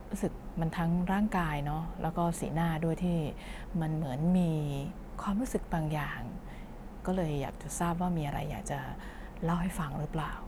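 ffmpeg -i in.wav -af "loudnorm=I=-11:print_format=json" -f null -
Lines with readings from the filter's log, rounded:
"input_i" : "-33.7",
"input_tp" : "-18.0",
"input_lra" : "2.9",
"input_thresh" : "-44.0",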